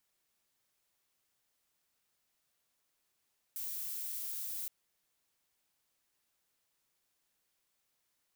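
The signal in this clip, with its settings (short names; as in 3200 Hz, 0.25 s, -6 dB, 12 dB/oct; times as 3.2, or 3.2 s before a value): noise violet, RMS -40 dBFS 1.12 s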